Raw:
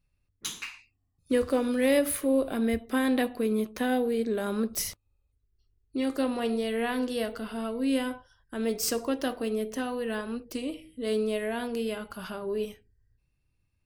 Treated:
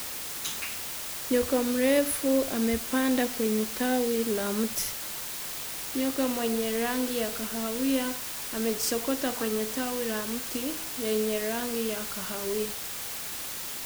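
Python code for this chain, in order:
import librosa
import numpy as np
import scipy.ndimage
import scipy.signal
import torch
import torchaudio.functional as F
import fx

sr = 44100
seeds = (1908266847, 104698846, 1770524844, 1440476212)

y = fx.spec_box(x, sr, start_s=9.35, length_s=0.3, low_hz=760.0, high_hz=2000.0, gain_db=10)
y = fx.quant_dither(y, sr, seeds[0], bits=6, dither='triangular')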